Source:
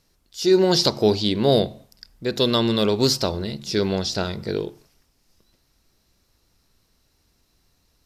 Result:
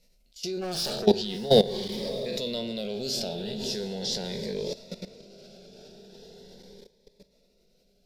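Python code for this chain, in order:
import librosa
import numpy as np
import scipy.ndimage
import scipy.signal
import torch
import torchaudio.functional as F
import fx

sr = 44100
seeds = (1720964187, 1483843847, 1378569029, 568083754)

y = fx.spec_trails(x, sr, decay_s=0.32)
y = fx.fixed_phaser(y, sr, hz=310.0, stages=6)
y = fx.transient(y, sr, attack_db=-5, sustain_db=4)
y = fx.bass_treble(y, sr, bass_db=5, treble_db=-7)
y = fx.clip_hard(y, sr, threshold_db=-23.5, at=(0.6, 1.05), fade=0.02)
y = fx.echo_diffused(y, sr, ms=637, feedback_pct=51, wet_db=-11.0)
y = fx.level_steps(y, sr, step_db=17)
y = fx.peak_eq(y, sr, hz=120.0, db=-13.0, octaves=1.7)
y = fx.notch_cascade(y, sr, direction='rising', hz=0.4)
y = y * librosa.db_to_amplitude(6.5)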